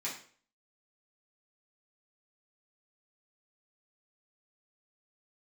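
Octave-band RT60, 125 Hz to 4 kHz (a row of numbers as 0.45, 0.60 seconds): 0.45, 0.50, 0.50, 0.45, 0.45, 0.40 seconds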